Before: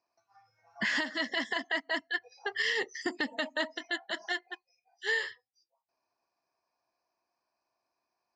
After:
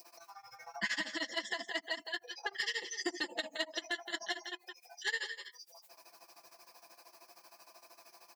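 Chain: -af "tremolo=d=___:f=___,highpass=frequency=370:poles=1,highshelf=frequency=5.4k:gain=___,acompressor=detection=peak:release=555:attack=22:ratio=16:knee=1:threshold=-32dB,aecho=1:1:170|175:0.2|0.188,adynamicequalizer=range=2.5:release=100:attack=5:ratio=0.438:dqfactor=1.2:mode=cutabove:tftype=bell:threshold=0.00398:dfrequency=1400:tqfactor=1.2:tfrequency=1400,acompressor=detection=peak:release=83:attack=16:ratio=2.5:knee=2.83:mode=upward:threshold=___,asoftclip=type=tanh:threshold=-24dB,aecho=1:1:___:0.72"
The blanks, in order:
0.96, 13, 11, -42dB, 5.9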